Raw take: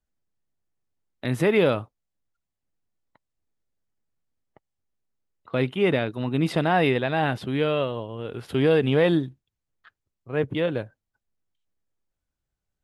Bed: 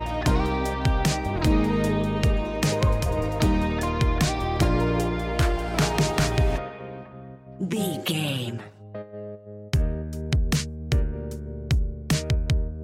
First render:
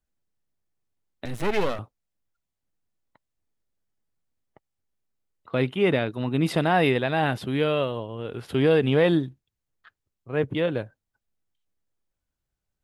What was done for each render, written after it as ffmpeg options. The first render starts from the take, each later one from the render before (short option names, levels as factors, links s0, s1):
-filter_complex "[0:a]asettb=1/sr,asplit=3[s0][s1][s2];[s0]atrim=end=1.254[s3];[s1]atrim=start=1.25:end=1.79,asetpts=PTS-STARTPTS,afade=t=in:d=0.004:c=qsin,afade=t=out:st=0.536:d=0.004:c=qsin,aeval=exprs='max(val(0),0)':c=same[s4];[s2]atrim=start=1.786[s5];[s3][s4]acrossfade=d=0.004:c1=hsin:c2=qsin[s6];[s6][s5]acrossfade=d=0.004:c1=qsin:c2=hsin,asettb=1/sr,asplit=3[s7][s8][s9];[s7]atrim=end=6.444[s10];[s8]atrim=start=6.44:end=7.98,asetpts=PTS-STARTPTS,afade=t=in:d=0.004:c=qsin,afade=t=out:st=1.536:d=0.004:c=qsin,highshelf=f=8400:g=7[s11];[s9]atrim=start=7.976[s12];[s10][s11]acrossfade=d=0.004:c1=hsin:c2=qsin[s13];[s13][s12]acrossfade=d=0.004:c1=qsin:c2=hsin"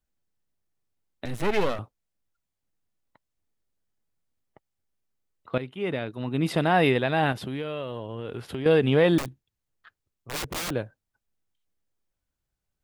-filter_complex "[0:a]asettb=1/sr,asplit=3[s0][s1][s2];[s0]atrim=end=7.324[s3];[s1]atrim=start=7.32:end=8.66,asetpts=PTS-STARTPTS,afade=t=in:d=0.004:c=qsin,afade=t=out:st=1.336:d=0.004:c=qsin,acompressor=threshold=0.0398:ratio=6:attack=3.2:release=140:knee=1:detection=peak[s4];[s2]atrim=start=8.656[s5];[s3][s4]acrossfade=d=0.004:c1=hsin:c2=qsin[s6];[s6][s5]acrossfade=d=0.004:c1=qsin:c2=hsin,asettb=1/sr,asplit=3[s7][s8][s9];[s7]atrim=end=9.184[s10];[s8]atrim=start=9.18:end=10.71,asetpts=PTS-STARTPTS,afade=t=in:d=0.004:c=qsin,afade=t=out:st=1.526:d=0.004:c=qsin,aeval=exprs='(mod(21.1*val(0)+1,2)-1)/21.1':c=same[s11];[s9]atrim=start=10.706[s12];[s10][s11]acrossfade=d=0.004:c1=hsin:c2=qsin[s13];[s13][s12]acrossfade=d=0.004:c1=qsin:c2=hsin,asplit=2[s14][s15];[s14]atrim=end=5.58,asetpts=PTS-STARTPTS,afade=t=out:st=5.576:d=0.004:c=hsin:silence=0.211349[s16];[s15]atrim=start=5.58,asetpts=PTS-STARTPTS,afade=t=in:d=1.18:silence=0.211349[s17];[s16][s17]concat=n=2:v=0:a=1"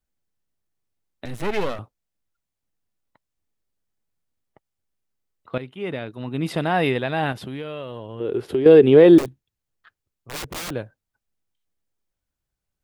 -filter_complex "[0:a]asettb=1/sr,asplit=3[s0][s1][s2];[s0]atrim=end=8.204[s3];[s1]atrim=start=8.2:end=9.26,asetpts=PTS-STARTPTS,afade=t=in:d=0.004:c=qsin,afade=t=out:st=1.056:d=0.004:c=qsin,equalizer=f=380:t=o:w=0.92:g=15[s4];[s2]atrim=start=9.256[s5];[s3][s4]acrossfade=d=0.004:c1=hsin:c2=qsin[s6];[s6][s5]acrossfade=d=0.004:c1=qsin:c2=hsin"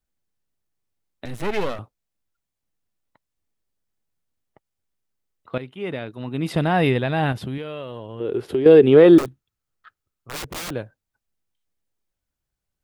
-filter_complex "[0:a]asettb=1/sr,asplit=3[s0][s1][s2];[s0]atrim=end=6.544[s3];[s1]atrim=start=6.54:end=7.58,asetpts=PTS-STARTPTS,afade=t=in:d=0.004:c=qsin,afade=t=out:st=1.036:d=0.004:c=qsin,lowshelf=f=160:g=10.5[s4];[s2]atrim=start=7.576[s5];[s3][s4]acrossfade=d=0.004:c1=hsin:c2=qsin[s6];[s6][s5]acrossfade=d=0.004:c1=qsin:c2=hsin,asettb=1/sr,asplit=3[s7][s8][s9];[s7]atrim=end=8.904[s10];[s8]atrim=start=8.9:end=10.35,asetpts=PTS-STARTPTS,afade=t=in:d=0.004:c=qsin,afade=t=out:st=1.446:d=0.004:c=qsin,equalizer=f=1300:t=o:w=0.26:g=10[s11];[s9]atrim=start=10.346[s12];[s10][s11]acrossfade=d=0.004:c1=hsin:c2=qsin[s13];[s13][s12]acrossfade=d=0.004:c1=qsin:c2=hsin"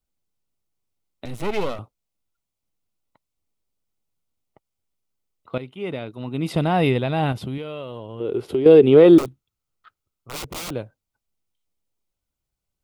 -af "equalizer=f=1700:w=5.5:g=-10.5"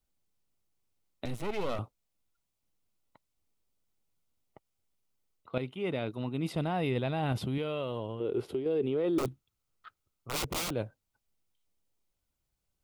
-af "alimiter=limit=0.376:level=0:latency=1,areverse,acompressor=threshold=0.0355:ratio=5,areverse"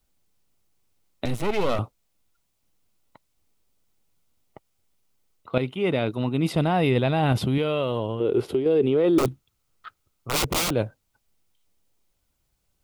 -af "volume=2.99"